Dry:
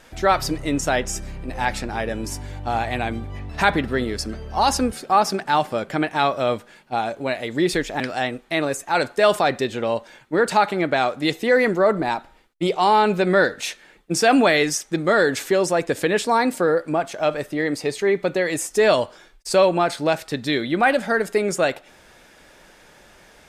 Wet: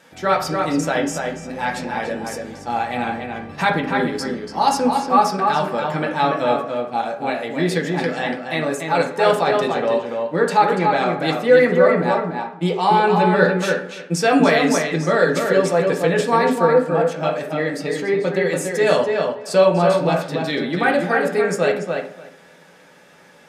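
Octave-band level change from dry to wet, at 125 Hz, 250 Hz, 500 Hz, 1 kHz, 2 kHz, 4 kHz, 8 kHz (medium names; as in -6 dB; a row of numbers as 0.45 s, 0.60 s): +4.5 dB, +2.0 dB, +3.0 dB, +2.5 dB, +1.0 dB, -1.0 dB, -2.5 dB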